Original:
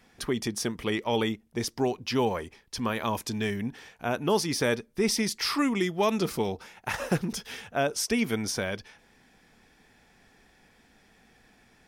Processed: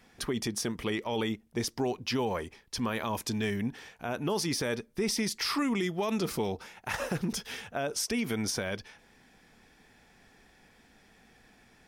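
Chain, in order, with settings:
brickwall limiter −21.5 dBFS, peak gain reduction 8.5 dB

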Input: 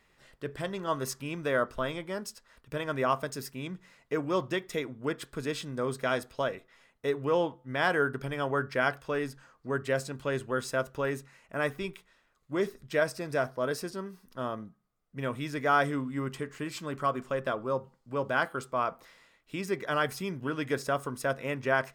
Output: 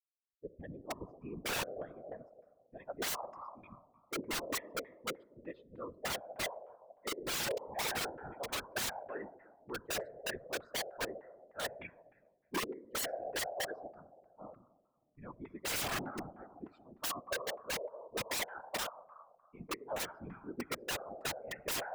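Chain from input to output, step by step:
spectral dynamics exaggerated over time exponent 3
high-shelf EQ 5,600 Hz +7 dB
convolution reverb RT60 1.7 s, pre-delay 6 ms, DRR 14.5 dB
soft clipping −23 dBFS, distortion −19 dB
auto-filter low-pass saw down 3.3 Hz 450–2,100 Hz
dynamic equaliser 1,200 Hz, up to −5 dB, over −46 dBFS, Q 1.1
band-pass filter sweep 360 Hz → 840 Hz, 0:01.47–0:03.14
wrap-around overflow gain 43.5 dB
random phases in short frames
level +12.5 dB

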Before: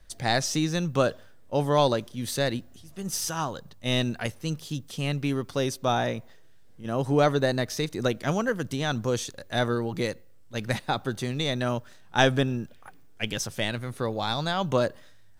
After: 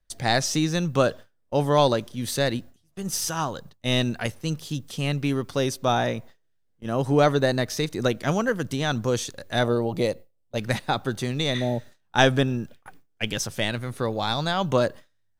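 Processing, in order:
0:09.63–0:10.58: graphic EQ with 15 bands 630 Hz +8 dB, 1,600 Hz −9 dB, 6,300 Hz −4 dB
noise gate with hold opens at −35 dBFS
0:11.57–0:11.89: healed spectral selection 920–10,000 Hz both
level +2.5 dB

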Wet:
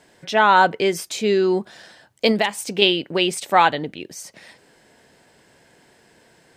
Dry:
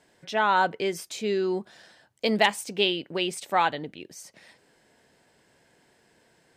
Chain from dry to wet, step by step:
0:02.31–0:02.82: downward compressor 6 to 1, threshold −25 dBFS, peak gain reduction 9.5 dB
level +8 dB

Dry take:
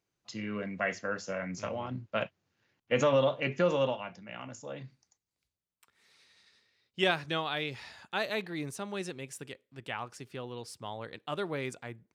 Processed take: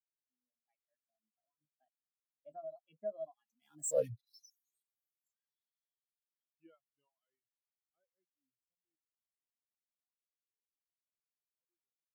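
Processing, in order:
spike at every zero crossing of −27 dBFS
source passing by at 0:03.98, 54 m/s, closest 5.8 metres
reverb reduction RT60 1.5 s
every bin expanded away from the loudest bin 2.5 to 1
level +9.5 dB

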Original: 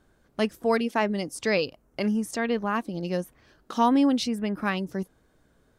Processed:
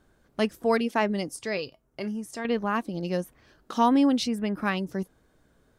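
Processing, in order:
0:01.36–0:02.45: tuned comb filter 130 Hz, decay 0.17 s, harmonics odd, mix 60%

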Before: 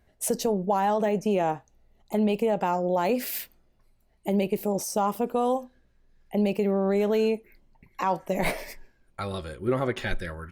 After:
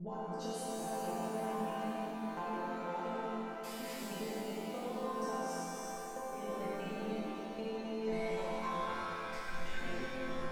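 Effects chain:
slices reordered back to front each 158 ms, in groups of 5
resonators tuned to a chord F3 major, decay 0.7 s
downward compressor 10 to 1, threshold −55 dBFS, peak gain reduction 20.5 dB
low-pass filter 7,900 Hz 12 dB per octave
reverb with rising layers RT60 3.8 s, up +7 semitones, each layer −8 dB, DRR −6.5 dB
level +12 dB

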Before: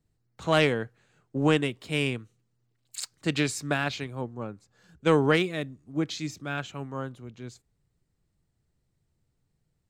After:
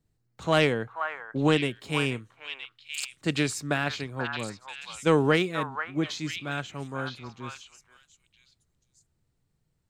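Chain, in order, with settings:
echo through a band-pass that steps 484 ms, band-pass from 1,200 Hz, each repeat 1.4 octaves, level −2 dB

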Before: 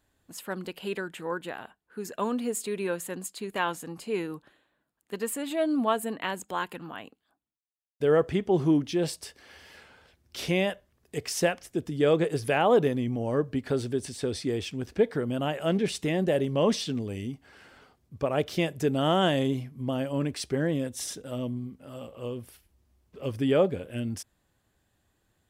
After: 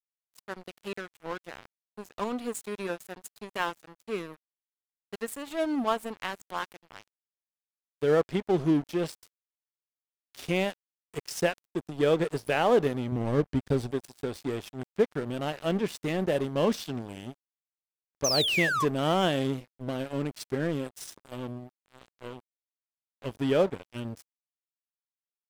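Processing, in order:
0:18.24–0:18.85: sound drawn into the spectrogram fall 1,000–6,400 Hz −25 dBFS
dead-zone distortion −35.5 dBFS
0:13.12–0:13.91: low-shelf EQ 200 Hz +10.5 dB

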